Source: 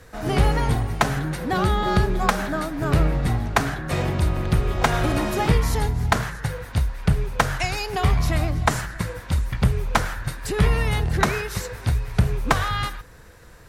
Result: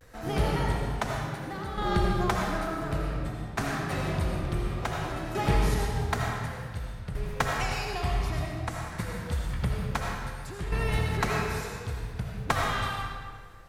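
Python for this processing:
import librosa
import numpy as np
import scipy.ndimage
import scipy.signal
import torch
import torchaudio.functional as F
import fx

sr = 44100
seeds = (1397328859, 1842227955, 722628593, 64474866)

y = fx.tremolo_shape(x, sr, shape='saw_down', hz=0.56, depth_pct=75)
y = fx.vibrato(y, sr, rate_hz=0.83, depth_cents=81.0)
y = fx.rev_freeverb(y, sr, rt60_s=1.7, hf_ratio=0.8, predelay_ms=40, drr_db=-1.0)
y = F.gain(torch.from_numpy(y), -7.0).numpy()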